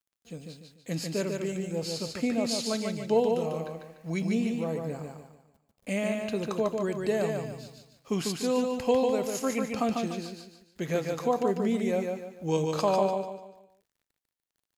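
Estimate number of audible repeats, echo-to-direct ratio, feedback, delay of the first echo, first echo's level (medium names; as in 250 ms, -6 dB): 4, -3.5 dB, 37%, 147 ms, -4.0 dB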